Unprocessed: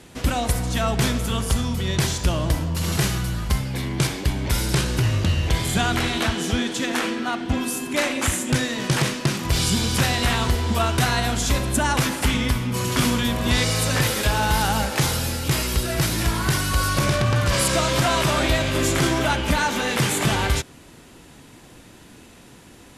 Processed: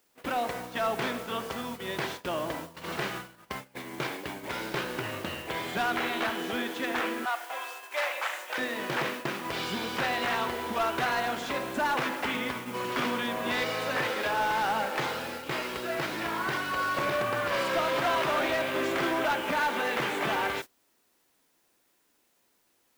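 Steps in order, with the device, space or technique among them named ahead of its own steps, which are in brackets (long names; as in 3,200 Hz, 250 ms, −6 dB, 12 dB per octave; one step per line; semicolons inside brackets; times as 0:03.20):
aircraft radio (band-pass filter 380–2,400 Hz; hard clipping −20 dBFS, distortion −16 dB; white noise bed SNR 18 dB; noise gate −34 dBFS, range −22 dB)
0:07.25–0:08.58: inverse Chebyshev high-pass filter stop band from 170 Hz, stop band 60 dB
level −2.5 dB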